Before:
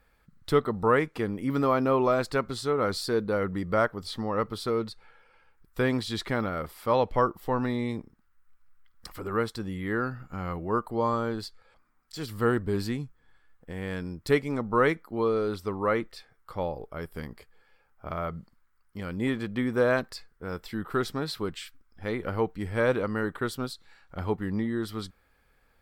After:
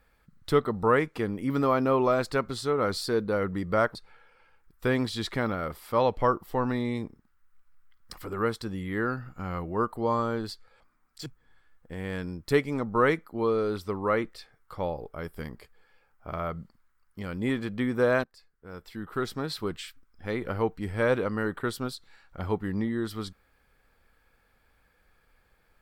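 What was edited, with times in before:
3.95–4.89 cut
12.2–13.04 cut
20.02–21.38 fade in, from -21 dB

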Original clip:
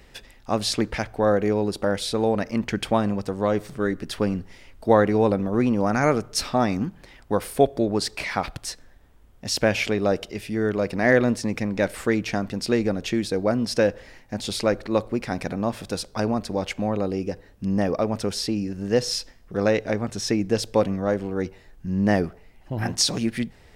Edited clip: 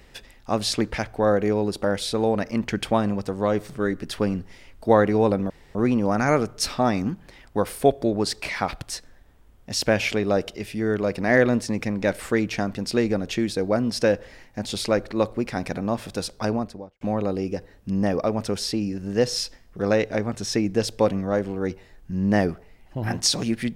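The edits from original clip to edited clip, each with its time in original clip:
5.5 insert room tone 0.25 s
16.19–16.76 studio fade out

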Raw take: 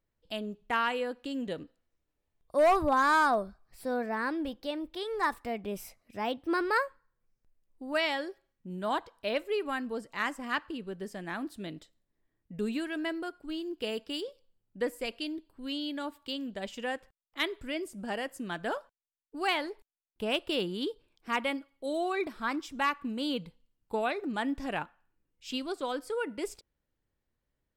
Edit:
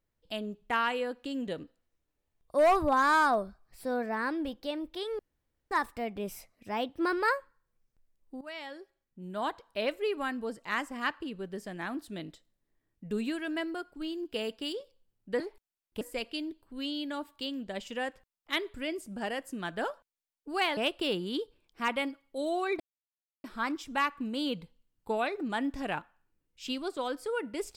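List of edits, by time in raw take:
5.19 insert room tone 0.52 s
7.89–9.26 fade in, from -17 dB
19.64–20.25 move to 14.88
22.28 insert silence 0.64 s

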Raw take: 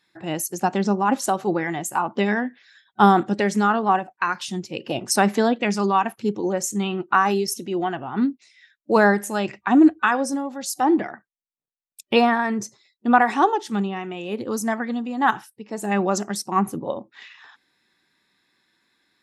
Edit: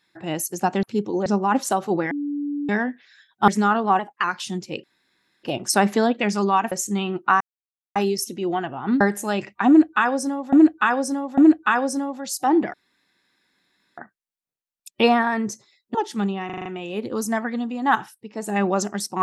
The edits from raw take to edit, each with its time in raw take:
1.68–2.26 bleep 289 Hz -23.5 dBFS
3.05–3.47 cut
3.98–4.25 speed 110%
4.85 insert room tone 0.60 s
6.13–6.56 move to 0.83
7.25 insert silence 0.55 s
8.3–9.07 cut
9.74–10.59 loop, 3 plays
11.1 insert room tone 1.24 s
13.07–13.5 cut
14.01 stutter 0.04 s, 6 plays

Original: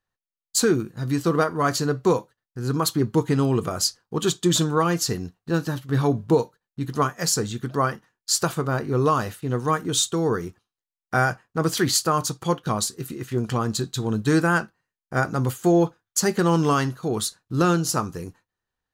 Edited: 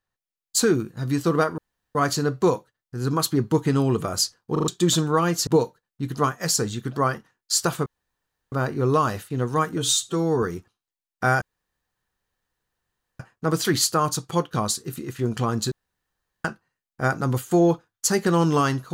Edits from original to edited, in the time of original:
1.58 insert room tone 0.37 s
4.15 stutter in place 0.04 s, 4 plays
5.1–6.25 cut
8.64 insert room tone 0.66 s
9.9–10.33 stretch 1.5×
11.32 insert room tone 1.78 s
13.84–14.57 room tone

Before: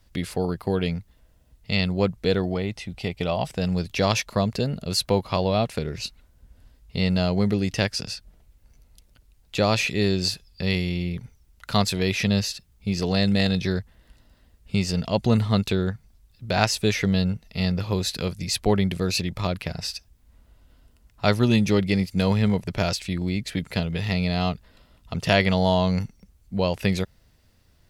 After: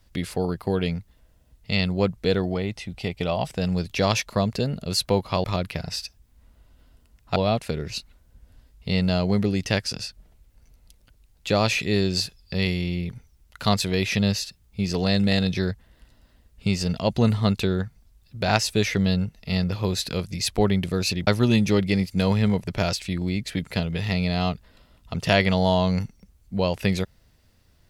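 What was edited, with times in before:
19.35–21.27 move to 5.44

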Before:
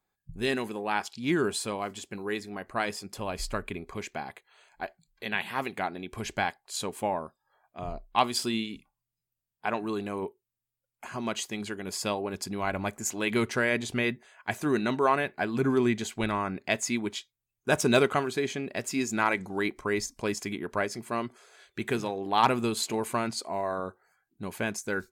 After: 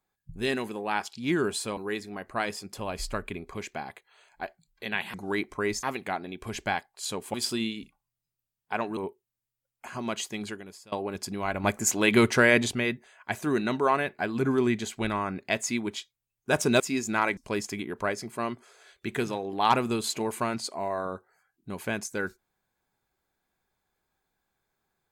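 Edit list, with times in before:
1.77–2.17 cut
7.05–8.27 cut
9.9–10.16 cut
11.68–12.11 fade out quadratic, to -23 dB
12.83–13.9 gain +6.5 dB
17.99–18.84 cut
19.41–20.1 move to 5.54

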